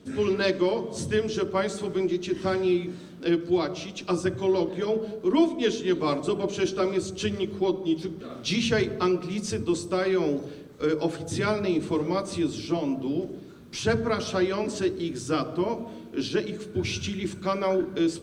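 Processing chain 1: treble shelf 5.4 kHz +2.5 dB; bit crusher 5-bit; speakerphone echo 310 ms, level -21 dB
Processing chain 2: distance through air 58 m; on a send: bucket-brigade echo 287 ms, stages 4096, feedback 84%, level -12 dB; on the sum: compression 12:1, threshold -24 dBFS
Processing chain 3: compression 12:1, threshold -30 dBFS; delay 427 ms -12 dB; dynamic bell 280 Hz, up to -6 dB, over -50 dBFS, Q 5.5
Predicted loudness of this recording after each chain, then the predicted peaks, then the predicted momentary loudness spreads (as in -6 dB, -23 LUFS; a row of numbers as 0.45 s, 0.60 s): -26.5 LUFS, -30.0 LUFS, -35.5 LUFS; -9.5 dBFS, -15.5 dBFS, -18.5 dBFS; 6 LU, 3 LU, 3 LU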